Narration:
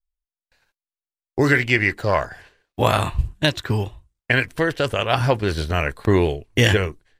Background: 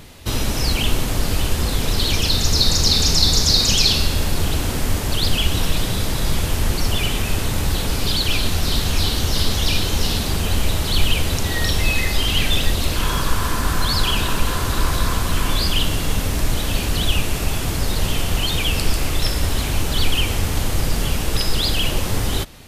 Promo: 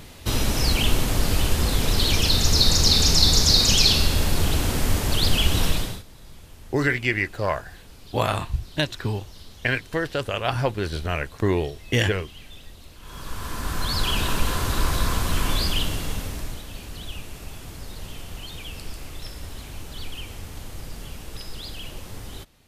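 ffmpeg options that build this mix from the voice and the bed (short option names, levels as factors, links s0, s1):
-filter_complex "[0:a]adelay=5350,volume=0.562[s0];[1:a]volume=10.6,afade=t=out:st=5.67:d=0.36:silence=0.0630957,afade=t=in:st=13.01:d=1.25:silence=0.0794328,afade=t=out:st=15.53:d=1.12:silence=0.223872[s1];[s0][s1]amix=inputs=2:normalize=0"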